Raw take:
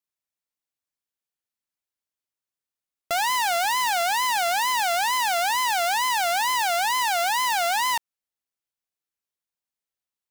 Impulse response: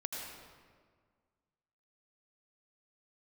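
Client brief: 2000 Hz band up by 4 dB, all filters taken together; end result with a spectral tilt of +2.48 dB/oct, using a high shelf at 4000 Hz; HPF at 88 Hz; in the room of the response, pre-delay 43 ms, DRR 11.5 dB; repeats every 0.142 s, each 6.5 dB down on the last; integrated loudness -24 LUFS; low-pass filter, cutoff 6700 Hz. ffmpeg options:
-filter_complex "[0:a]highpass=88,lowpass=6.7k,equalizer=f=2k:t=o:g=4,highshelf=f=4k:g=3.5,aecho=1:1:142|284|426|568|710|852:0.473|0.222|0.105|0.0491|0.0231|0.0109,asplit=2[a][b];[1:a]atrim=start_sample=2205,adelay=43[c];[b][c]afir=irnorm=-1:irlink=0,volume=-12.5dB[d];[a][d]amix=inputs=2:normalize=0,volume=-5dB"

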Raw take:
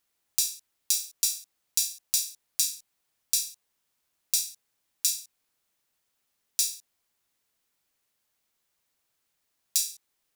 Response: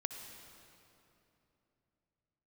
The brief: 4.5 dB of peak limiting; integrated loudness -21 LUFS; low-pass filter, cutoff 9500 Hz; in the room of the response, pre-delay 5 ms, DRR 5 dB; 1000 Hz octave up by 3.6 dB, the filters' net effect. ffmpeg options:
-filter_complex "[0:a]lowpass=9.5k,equalizer=f=1k:t=o:g=4.5,alimiter=limit=-10.5dB:level=0:latency=1,asplit=2[a][b];[1:a]atrim=start_sample=2205,adelay=5[c];[b][c]afir=irnorm=-1:irlink=0,volume=-4.5dB[d];[a][d]amix=inputs=2:normalize=0,volume=9dB"

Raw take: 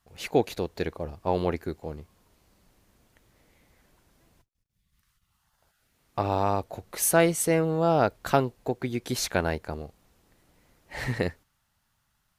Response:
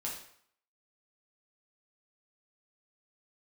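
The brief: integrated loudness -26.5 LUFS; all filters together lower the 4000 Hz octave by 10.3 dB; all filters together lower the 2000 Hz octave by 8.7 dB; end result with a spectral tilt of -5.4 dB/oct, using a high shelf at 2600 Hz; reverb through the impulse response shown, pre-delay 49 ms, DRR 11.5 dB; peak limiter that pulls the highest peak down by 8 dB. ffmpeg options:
-filter_complex "[0:a]equalizer=f=2k:t=o:g=-9,highshelf=f=2.6k:g=-5,equalizer=f=4k:t=o:g=-6,alimiter=limit=-16dB:level=0:latency=1,asplit=2[a][b];[1:a]atrim=start_sample=2205,adelay=49[c];[b][c]afir=irnorm=-1:irlink=0,volume=-12.5dB[d];[a][d]amix=inputs=2:normalize=0,volume=4dB"

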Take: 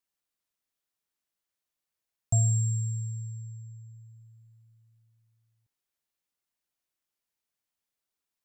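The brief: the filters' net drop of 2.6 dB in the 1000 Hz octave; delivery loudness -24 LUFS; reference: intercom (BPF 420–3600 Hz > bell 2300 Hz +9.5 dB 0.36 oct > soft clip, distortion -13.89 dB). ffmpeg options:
-af "highpass=420,lowpass=3.6k,equalizer=f=1k:t=o:g=-4.5,equalizer=f=2.3k:t=o:w=0.36:g=9.5,asoftclip=threshold=-38dB,volume=25.5dB"

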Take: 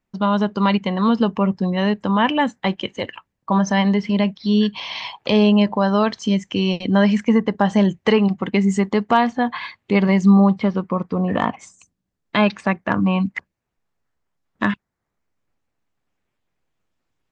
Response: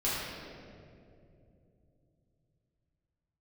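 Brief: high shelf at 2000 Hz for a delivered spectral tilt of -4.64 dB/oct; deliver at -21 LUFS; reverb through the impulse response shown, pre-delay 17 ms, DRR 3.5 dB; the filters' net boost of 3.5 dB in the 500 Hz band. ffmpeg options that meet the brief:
-filter_complex "[0:a]equalizer=f=500:t=o:g=4,highshelf=f=2k:g=6.5,asplit=2[a][b];[1:a]atrim=start_sample=2205,adelay=17[c];[b][c]afir=irnorm=-1:irlink=0,volume=-12.5dB[d];[a][d]amix=inputs=2:normalize=0,volume=-5dB"

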